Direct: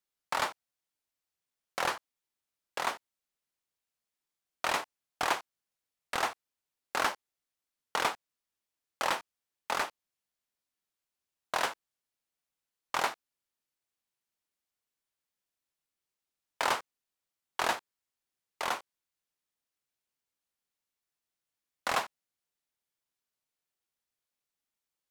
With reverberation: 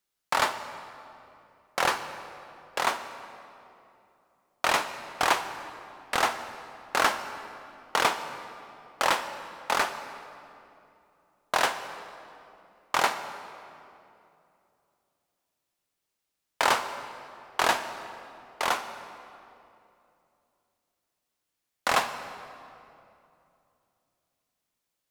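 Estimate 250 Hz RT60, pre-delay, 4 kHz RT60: 3.3 s, 31 ms, 1.9 s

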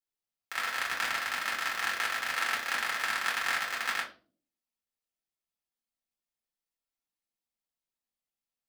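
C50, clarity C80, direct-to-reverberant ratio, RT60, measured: 9.0 dB, 14.5 dB, -3.5 dB, 0.45 s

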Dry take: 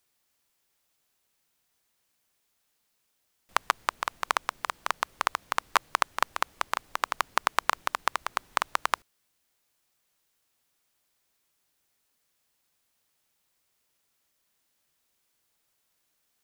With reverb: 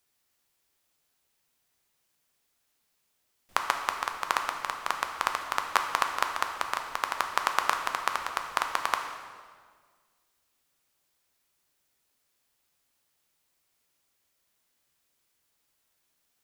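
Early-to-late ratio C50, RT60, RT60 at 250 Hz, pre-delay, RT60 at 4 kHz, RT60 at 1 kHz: 6.0 dB, 1.7 s, 2.1 s, 6 ms, 1.4 s, 1.6 s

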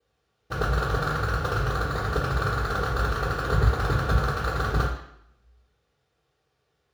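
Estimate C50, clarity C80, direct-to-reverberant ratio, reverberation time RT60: 4.5 dB, 8.0 dB, -10.5 dB, 0.70 s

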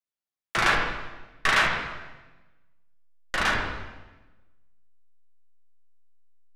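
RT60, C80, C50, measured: 1.2 s, 4.5 dB, 2.5 dB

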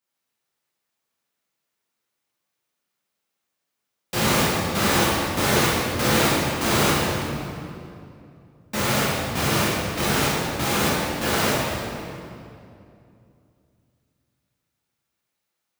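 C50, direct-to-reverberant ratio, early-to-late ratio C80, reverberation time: -2.5 dB, -8.5 dB, -0.5 dB, 2.6 s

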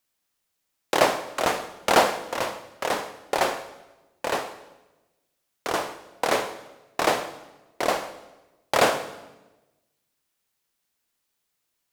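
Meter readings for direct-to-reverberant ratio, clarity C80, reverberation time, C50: 10.5 dB, 14.0 dB, 1.1 s, 12.0 dB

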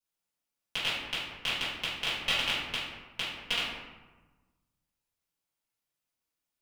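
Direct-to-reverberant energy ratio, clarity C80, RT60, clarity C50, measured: -12.0 dB, 3.0 dB, 1.2 s, 0.0 dB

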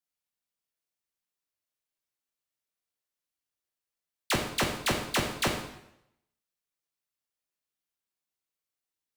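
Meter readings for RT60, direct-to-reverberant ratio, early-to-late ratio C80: 0.80 s, 1.5 dB, 8.5 dB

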